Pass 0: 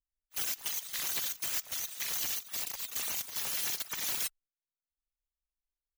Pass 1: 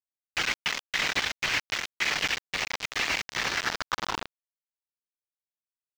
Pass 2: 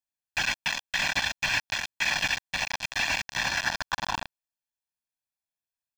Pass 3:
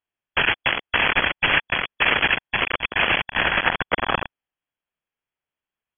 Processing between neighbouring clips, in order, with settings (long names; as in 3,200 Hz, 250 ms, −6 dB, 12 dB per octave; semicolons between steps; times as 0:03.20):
low-pass filter sweep 2,200 Hz → 640 Hz, 0:03.32–0:04.72; log-companded quantiser 2 bits; high shelf with overshoot 7,500 Hz −13.5 dB, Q 1.5; level +3.5 dB
comb filter 1.2 ms, depth 86%; level −1.5 dB
sub-harmonics by changed cycles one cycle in 2, inverted; linear-phase brick-wall low-pass 3,400 Hz; level +8.5 dB